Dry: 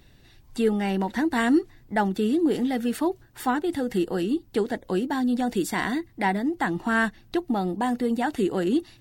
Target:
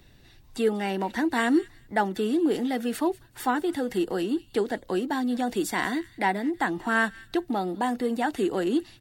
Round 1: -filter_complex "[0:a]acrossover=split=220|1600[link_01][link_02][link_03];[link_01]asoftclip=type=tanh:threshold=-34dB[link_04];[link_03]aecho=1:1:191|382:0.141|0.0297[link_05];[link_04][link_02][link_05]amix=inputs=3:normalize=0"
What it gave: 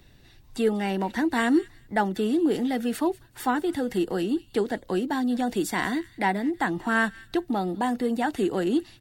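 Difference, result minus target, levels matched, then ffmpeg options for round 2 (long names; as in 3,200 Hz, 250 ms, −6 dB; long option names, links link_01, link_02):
soft clipping: distortion −7 dB
-filter_complex "[0:a]acrossover=split=220|1600[link_01][link_02][link_03];[link_01]asoftclip=type=tanh:threshold=-45dB[link_04];[link_03]aecho=1:1:191|382:0.141|0.0297[link_05];[link_04][link_02][link_05]amix=inputs=3:normalize=0"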